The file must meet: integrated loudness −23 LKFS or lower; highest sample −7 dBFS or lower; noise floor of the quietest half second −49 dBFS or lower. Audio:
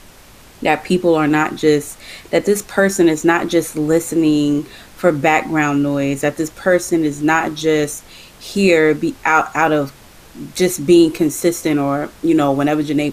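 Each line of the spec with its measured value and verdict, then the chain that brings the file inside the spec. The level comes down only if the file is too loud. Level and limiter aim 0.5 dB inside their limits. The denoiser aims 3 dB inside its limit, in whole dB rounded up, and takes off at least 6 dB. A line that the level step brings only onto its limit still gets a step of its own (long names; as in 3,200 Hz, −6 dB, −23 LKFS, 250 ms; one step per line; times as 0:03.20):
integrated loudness −16.0 LKFS: out of spec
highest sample −1.5 dBFS: out of spec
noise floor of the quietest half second −43 dBFS: out of spec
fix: level −7.5 dB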